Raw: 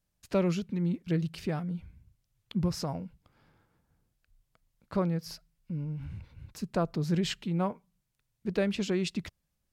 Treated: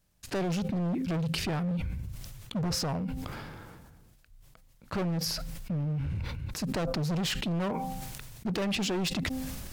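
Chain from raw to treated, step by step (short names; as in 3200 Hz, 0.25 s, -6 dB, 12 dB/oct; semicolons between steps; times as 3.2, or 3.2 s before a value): de-hum 260.5 Hz, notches 3; in parallel at -1 dB: compressor, threshold -37 dBFS, peak gain reduction 15 dB; on the sum: overloaded stage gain 31 dB; sustainer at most 25 dB/s; gain +3 dB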